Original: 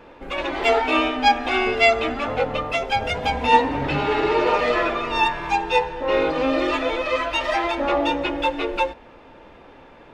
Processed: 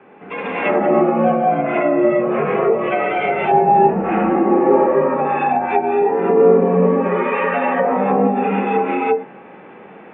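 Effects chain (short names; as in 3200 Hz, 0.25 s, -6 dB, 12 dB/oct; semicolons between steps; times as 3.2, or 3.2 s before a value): mistuned SSB -88 Hz 270–2800 Hz; non-linear reverb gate 0.34 s rising, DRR -7 dB; treble ducked by the level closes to 780 Hz, closed at -10.5 dBFS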